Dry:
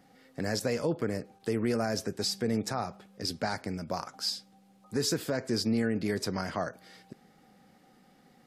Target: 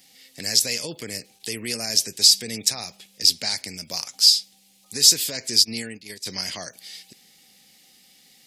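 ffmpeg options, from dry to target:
ffmpeg -i in.wav -filter_complex "[0:a]asplit=3[link_01][link_02][link_03];[link_01]afade=type=out:start_time=5.63:duration=0.02[link_04];[link_02]agate=range=-16dB:threshold=-27dB:ratio=16:detection=peak,afade=type=in:start_time=5.63:duration=0.02,afade=type=out:start_time=6.25:duration=0.02[link_05];[link_03]afade=type=in:start_time=6.25:duration=0.02[link_06];[link_04][link_05][link_06]amix=inputs=3:normalize=0,aexciter=amount=12.3:drive=4.1:freq=2100,volume=-5.5dB" out.wav

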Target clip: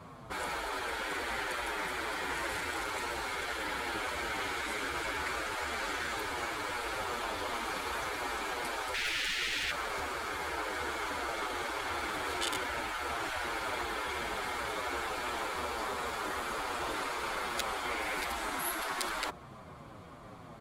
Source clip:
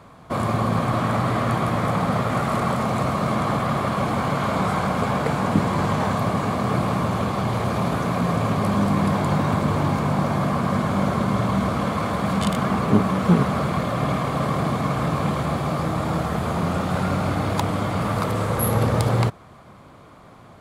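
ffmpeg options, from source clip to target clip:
ffmpeg -i in.wav -filter_complex "[0:a]asettb=1/sr,asplit=3[link_01][link_02][link_03];[link_01]atrim=end=8.944[link_04];[link_02]atrim=start=8.94:end=9.71,asetpts=PTS-STARTPTS,afade=type=in:duration=0.004:curve=qsin,afade=type=out:start_time=0.766:duration=0.004:curve=qsin,asplit=2[link_05][link_06];[link_06]highpass=frequency=720:poles=1,volume=29dB,asoftclip=type=tanh:threshold=-9.5dB[link_07];[link_05][link_07]amix=inputs=2:normalize=0,lowpass=frequency=1800:poles=1,volume=-6dB[link_08];[link_03]atrim=start=9.706[link_09];[link_04][link_08]acrossfade=duration=0.004:curve1=hsin:curve2=qsin[link_10];[link_10][link_09]acrossfade=duration=0.004:curve1=qsin:curve2=hsin,asettb=1/sr,asplit=3[link_11][link_12][link_13];[link_11]atrim=end=17.854[link_14];[link_12]atrim=start=17.85:end=18.27,asetpts=PTS-STARTPTS,afade=type=in:duration=0.004:curve=qsin,afade=type=out:start_time=0.416:duration=0.004:curve=qsin,equalizer=frequency=2200:width=4.4:gain=6[link_15];[link_13]atrim=start=18.266[link_16];[link_14][link_15]acrossfade=duration=0.004:curve1=hsin:curve2=qsin[link_17];[link_17][link_16]acrossfade=duration=0.004:curve1=qsin:curve2=hsin,afftfilt=real='re*lt(hypot(re,im),0.141)':imag='im*lt(hypot(re,im),0.141)':win_size=1024:overlap=0.75,asplit=2[link_18][link_19];[link_19]adelay=7.5,afreqshift=-2.7[link_20];[link_18][link_20]amix=inputs=2:normalize=1" out.wav

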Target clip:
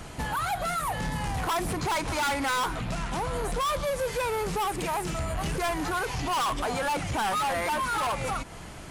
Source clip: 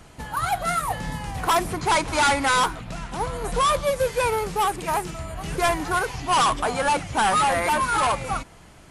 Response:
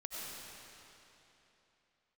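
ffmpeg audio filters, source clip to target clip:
-af "alimiter=level_in=0.5dB:limit=-24dB:level=0:latency=1:release=188,volume=-0.5dB,asoftclip=type=tanh:threshold=-31dB,volume=6.5dB"

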